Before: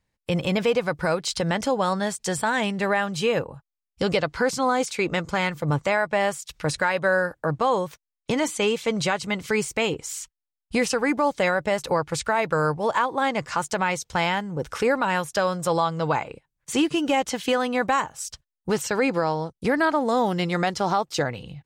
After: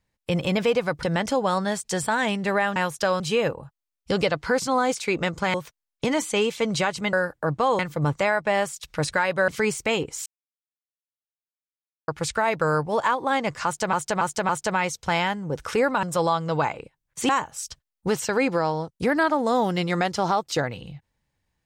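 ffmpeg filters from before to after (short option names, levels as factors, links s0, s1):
-filter_complex "[0:a]asplit=15[s0][s1][s2][s3][s4][s5][s6][s7][s8][s9][s10][s11][s12][s13][s14];[s0]atrim=end=1.032[s15];[s1]atrim=start=1.378:end=3.112[s16];[s2]atrim=start=15.098:end=15.542[s17];[s3]atrim=start=3.108:end=5.452[s18];[s4]atrim=start=7.798:end=9.392[s19];[s5]atrim=start=7.138:end=7.802[s20];[s6]atrim=start=5.448:end=7.142[s21];[s7]atrim=start=9.388:end=10.17,asetpts=PTS-STARTPTS,afade=t=out:st=0.778:d=0.004:c=hsin[s22];[s8]atrim=start=10.17:end=11.99,asetpts=PTS-STARTPTS,volume=0[s23];[s9]atrim=start=11.99:end=13.842,asetpts=PTS-STARTPTS,afade=t=in:d=0.004:c=hsin[s24];[s10]atrim=start=13.558:end=13.842[s25];[s11]atrim=start=13.558:end=13.842[s26];[s12]atrim=start=13.558:end=15.102[s27];[s13]atrim=start=15.538:end=16.802[s28];[s14]atrim=start=17.908[s29];[s15][s16]acrossfade=d=0.004:c1=hsin:c2=hsin[s30];[s30][s17]acrossfade=d=0.004:c1=hsin:c2=hsin[s31];[s31][s18]acrossfade=d=0.004:c1=hsin:c2=hsin[s32];[s32][s19]acrossfade=d=0.004:c1=hsin:c2=hsin[s33];[s33][s20]acrossfade=d=0.004:c1=hsin:c2=hsin[s34];[s34][s21]acrossfade=d=0.004:c1=hsin:c2=hsin[s35];[s22][s23][s24]concat=n=3:v=0:a=1[s36];[s35][s36]acrossfade=d=0.004:c1=hsin:c2=hsin[s37];[s37][s25]acrossfade=d=0.004:c1=hsin:c2=hsin[s38];[s38][s26]acrossfade=d=0.004:c1=hsin:c2=hsin[s39];[s39][s27]acrossfade=d=0.004:c1=hsin:c2=hsin[s40];[s40][s28]acrossfade=d=0.004:c1=hsin:c2=hsin[s41];[s41][s29]acrossfade=d=0.004:c1=hsin:c2=hsin"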